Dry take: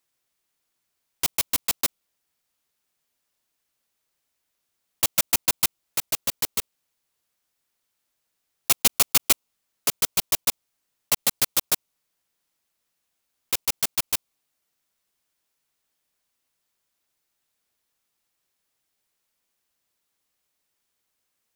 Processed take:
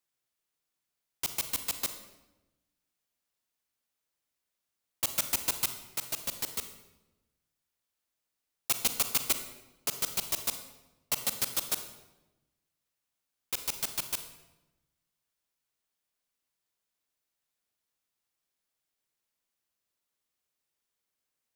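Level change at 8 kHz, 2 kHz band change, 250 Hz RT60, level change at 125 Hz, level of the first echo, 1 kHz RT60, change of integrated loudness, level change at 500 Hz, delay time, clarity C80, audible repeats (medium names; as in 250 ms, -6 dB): -8.0 dB, -8.0 dB, 1.3 s, -7.5 dB, no echo, 0.95 s, -8.0 dB, -7.5 dB, no echo, 11.5 dB, no echo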